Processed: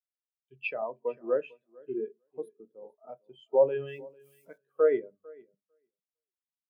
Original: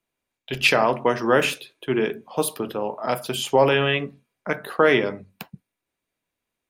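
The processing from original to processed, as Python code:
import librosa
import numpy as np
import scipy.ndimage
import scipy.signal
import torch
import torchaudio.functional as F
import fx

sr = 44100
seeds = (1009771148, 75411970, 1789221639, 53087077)

y = fx.crossing_spikes(x, sr, level_db=-15.5, at=(3.87, 4.58))
y = fx.echo_feedback(y, sr, ms=449, feedback_pct=31, wet_db=-10)
y = fx.spectral_expand(y, sr, expansion=2.5)
y = F.gain(torch.from_numpy(y), -7.5).numpy()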